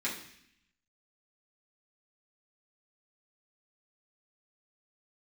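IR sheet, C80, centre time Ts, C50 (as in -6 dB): 10.0 dB, 29 ms, 6.5 dB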